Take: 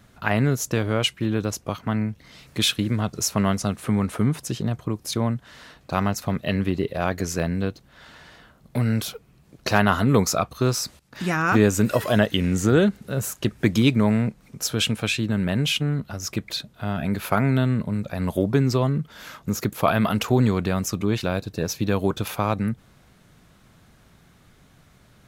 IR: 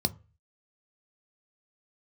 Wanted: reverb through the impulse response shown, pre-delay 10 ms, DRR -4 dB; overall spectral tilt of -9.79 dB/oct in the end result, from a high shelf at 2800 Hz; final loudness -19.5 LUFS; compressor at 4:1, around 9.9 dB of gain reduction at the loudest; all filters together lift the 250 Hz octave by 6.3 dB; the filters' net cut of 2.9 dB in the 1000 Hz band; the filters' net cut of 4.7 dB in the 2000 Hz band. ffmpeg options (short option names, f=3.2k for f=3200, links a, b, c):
-filter_complex "[0:a]equalizer=f=250:t=o:g=8,equalizer=f=1k:t=o:g=-3,equalizer=f=2k:t=o:g=-7,highshelf=f=2.8k:g=3,acompressor=threshold=-20dB:ratio=4,asplit=2[a][b];[1:a]atrim=start_sample=2205,adelay=10[c];[b][c]afir=irnorm=-1:irlink=0,volume=-2dB[d];[a][d]amix=inputs=2:normalize=0,volume=-6.5dB"